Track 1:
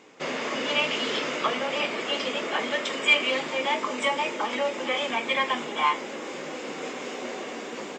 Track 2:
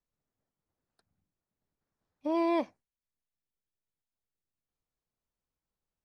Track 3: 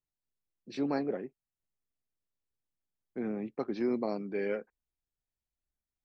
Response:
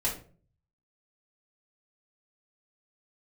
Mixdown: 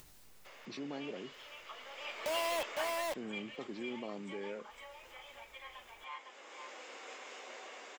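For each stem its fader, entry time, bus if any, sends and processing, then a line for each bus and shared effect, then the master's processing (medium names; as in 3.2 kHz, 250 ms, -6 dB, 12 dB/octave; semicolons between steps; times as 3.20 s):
-11.5 dB, 0.25 s, no bus, no send, echo send -17 dB, high-pass 660 Hz 12 dB/octave; auto duck -14 dB, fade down 0.25 s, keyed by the third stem
-1.5 dB, 0.00 s, bus A, no send, echo send -8.5 dB, steep high-pass 490 Hz 72 dB/octave; companded quantiser 2-bit
-8.0 dB, 0.00 s, bus A, no send, no echo send, level flattener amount 50%
bus A: 0.0 dB, compression 1.5:1, threshold -47 dBFS, peak gain reduction 7 dB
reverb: none
echo: delay 507 ms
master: upward compressor, threshold -49 dBFS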